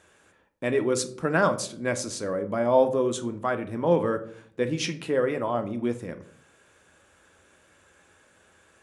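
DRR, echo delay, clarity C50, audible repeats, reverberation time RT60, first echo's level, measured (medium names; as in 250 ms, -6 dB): 8.0 dB, no echo, 14.5 dB, no echo, 0.55 s, no echo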